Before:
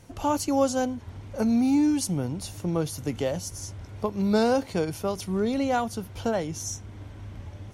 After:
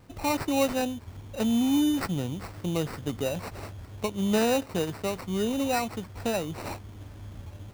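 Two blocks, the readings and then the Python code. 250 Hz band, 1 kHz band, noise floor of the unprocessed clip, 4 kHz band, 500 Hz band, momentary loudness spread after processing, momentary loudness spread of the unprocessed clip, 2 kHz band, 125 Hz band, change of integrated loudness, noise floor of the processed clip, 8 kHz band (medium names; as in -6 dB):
-2.0 dB, -2.5 dB, -44 dBFS, +2.5 dB, -2.0 dB, 17 LU, 16 LU, +2.0 dB, -2.0 dB, -2.0 dB, -46 dBFS, -3.5 dB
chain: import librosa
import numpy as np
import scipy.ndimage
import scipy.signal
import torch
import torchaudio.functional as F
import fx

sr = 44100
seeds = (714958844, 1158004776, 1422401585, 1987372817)

y = fx.sample_hold(x, sr, seeds[0], rate_hz=3300.0, jitter_pct=0)
y = y * 10.0 ** (-2.0 / 20.0)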